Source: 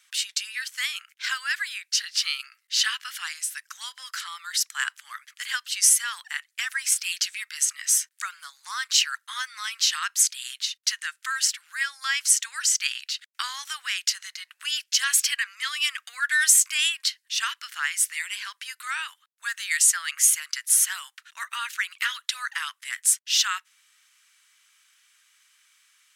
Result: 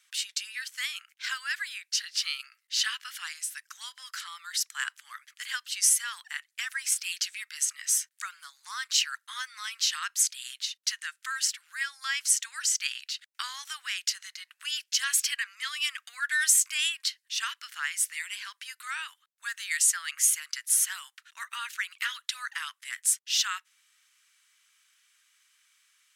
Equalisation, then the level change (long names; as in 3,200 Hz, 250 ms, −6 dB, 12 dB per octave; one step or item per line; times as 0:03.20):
low-shelf EQ 490 Hz −5.5 dB
−4.5 dB